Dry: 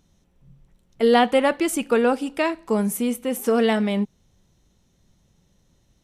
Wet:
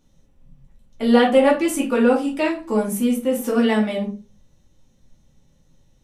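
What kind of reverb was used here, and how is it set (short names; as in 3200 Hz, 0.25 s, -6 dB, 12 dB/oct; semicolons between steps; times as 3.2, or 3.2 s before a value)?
shoebox room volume 160 m³, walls furnished, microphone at 2.4 m; gain -4.5 dB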